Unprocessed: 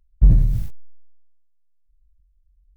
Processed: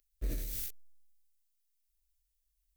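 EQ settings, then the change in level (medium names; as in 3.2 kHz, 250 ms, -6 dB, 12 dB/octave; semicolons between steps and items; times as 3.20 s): tilt EQ +3.5 dB/octave; peaking EQ 90 Hz -11 dB 2.3 oct; static phaser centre 370 Hz, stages 4; 0.0 dB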